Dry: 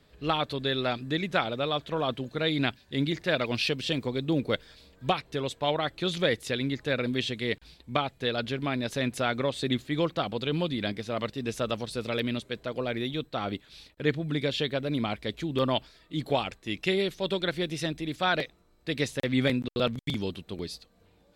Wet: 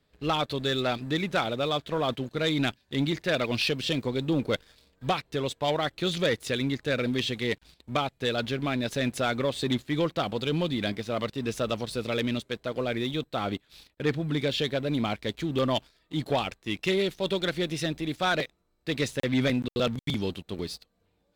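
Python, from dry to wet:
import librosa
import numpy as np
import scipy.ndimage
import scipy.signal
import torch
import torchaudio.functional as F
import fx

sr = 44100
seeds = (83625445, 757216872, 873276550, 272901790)

y = fx.leveller(x, sr, passes=2)
y = F.gain(torch.from_numpy(y), -5.5).numpy()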